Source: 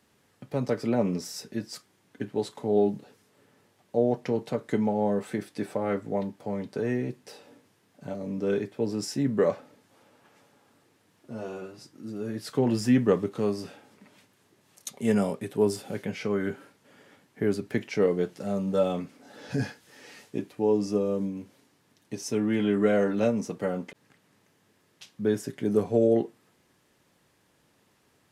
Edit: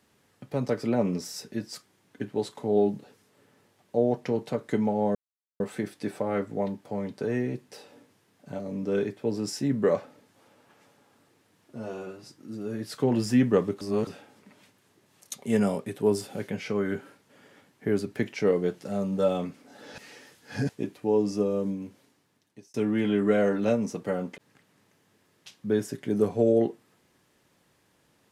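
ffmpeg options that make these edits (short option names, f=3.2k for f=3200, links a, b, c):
-filter_complex "[0:a]asplit=7[a][b][c][d][e][f][g];[a]atrim=end=5.15,asetpts=PTS-STARTPTS,afade=t=out:st=5.146:d=0.004:c=hsin,apad=pad_dur=0.45[h];[b]atrim=start=5.15:end=13.362,asetpts=PTS-STARTPTS,afade=t=in:d=0.004:c=hsin[i];[c]atrim=start=13.358:end=13.622,asetpts=PTS-STARTPTS,areverse[j];[d]atrim=start=13.618:end=19.532[k];[e]atrim=start=19.528:end=20.242,asetpts=PTS-STARTPTS,areverse[l];[f]atrim=start=20.238:end=22.29,asetpts=PTS-STARTPTS,afade=t=out:st=0.982:d=1.07:c=qsin[m];[g]atrim=start=22.29,asetpts=PTS-STARTPTS,afade=t=in:d=0.004:c=hsin[n];[h][i]concat=n=2:v=0:a=1[o];[o][j]acrossfade=d=0.004:c1=hsin:c2=hsin[p];[p][k]acrossfade=d=0.004:c1=hsin:c2=hsin[q];[q][l]acrossfade=d=0.004:c1=hsin:c2=hsin[r];[m][n]concat=n=2:v=0:a=1[s];[r][s]acrossfade=d=0.004:c1=hsin:c2=hsin"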